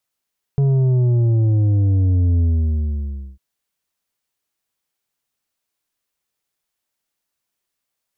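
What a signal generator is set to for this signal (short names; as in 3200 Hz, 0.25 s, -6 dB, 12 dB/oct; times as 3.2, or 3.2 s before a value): sub drop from 140 Hz, over 2.80 s, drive 7 dB, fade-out 0.97 s, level -13.5 dB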